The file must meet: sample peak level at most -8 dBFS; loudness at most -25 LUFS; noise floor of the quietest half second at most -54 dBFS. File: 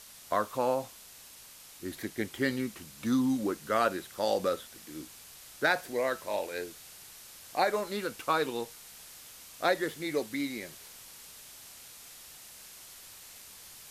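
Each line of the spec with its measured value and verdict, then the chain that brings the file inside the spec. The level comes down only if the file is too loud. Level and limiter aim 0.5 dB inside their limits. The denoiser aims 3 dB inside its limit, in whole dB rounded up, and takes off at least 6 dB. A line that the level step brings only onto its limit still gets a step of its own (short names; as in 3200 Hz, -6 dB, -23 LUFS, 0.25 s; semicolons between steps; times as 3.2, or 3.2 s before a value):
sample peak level -13.0 dBFS: OK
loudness -32.0 LUFS: OK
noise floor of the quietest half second -52 dBFS: fail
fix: denoiser 6 dB, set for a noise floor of -52 dBFS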